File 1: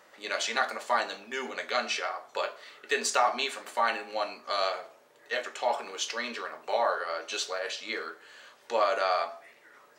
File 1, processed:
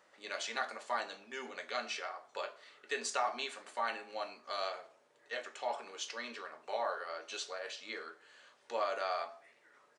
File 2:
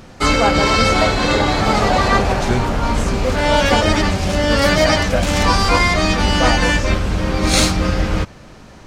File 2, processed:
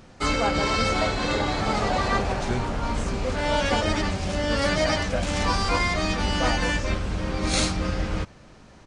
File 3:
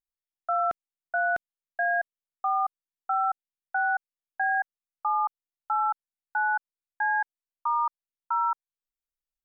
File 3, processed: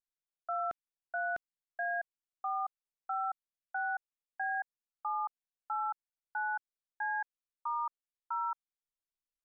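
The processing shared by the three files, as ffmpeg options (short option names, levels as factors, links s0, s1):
-af "aresample=22050,aresample=44100,volume=0.355"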